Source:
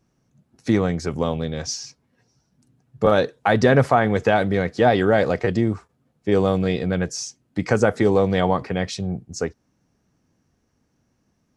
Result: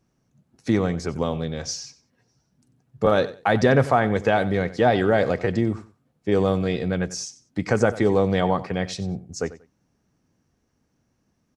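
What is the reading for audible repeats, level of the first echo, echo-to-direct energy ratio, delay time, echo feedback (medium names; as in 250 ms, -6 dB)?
2, -16.5 dB, -16.5 dB, 93 ms, 22%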